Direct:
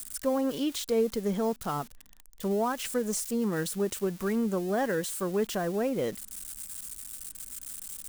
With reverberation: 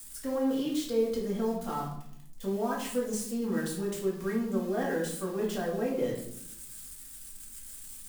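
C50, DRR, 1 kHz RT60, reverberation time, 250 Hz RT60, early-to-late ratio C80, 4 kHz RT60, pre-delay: 5.0 dB, -5.0 dB, 0.65 s, 0.70 s, 1.2 s, 9.0 dB, 0.55 s, 4 ms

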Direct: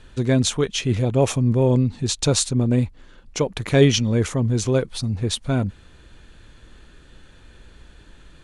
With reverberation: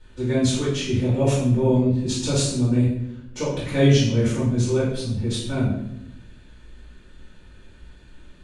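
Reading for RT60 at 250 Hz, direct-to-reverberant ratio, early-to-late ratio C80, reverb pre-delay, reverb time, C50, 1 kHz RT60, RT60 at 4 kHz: 1.2 s, -10.5 dB, 6.0 dB, 3 ms, 0.80 s, 1.5 dB, 0.65 s, 0.60 s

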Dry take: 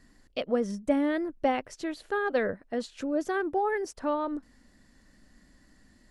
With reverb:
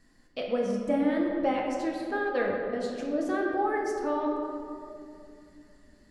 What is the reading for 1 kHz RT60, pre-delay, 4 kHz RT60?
2.2 s, 6 ms, 1.3 s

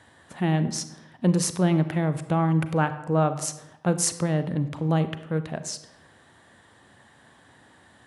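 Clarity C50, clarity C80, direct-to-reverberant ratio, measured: 12.5 dB, 14.5 dB, 11.0 dB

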